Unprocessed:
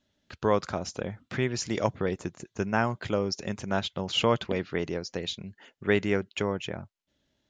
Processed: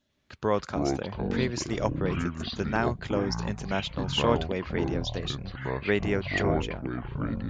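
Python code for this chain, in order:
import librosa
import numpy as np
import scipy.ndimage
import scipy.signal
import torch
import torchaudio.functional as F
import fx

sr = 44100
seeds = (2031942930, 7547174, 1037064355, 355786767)

y = fx.echo_pitch(x, sr, ms=94, semitones=-7, count=3, db_per_echo=-3.0)
y = y * librosa.db_to_amplitude(-1.5)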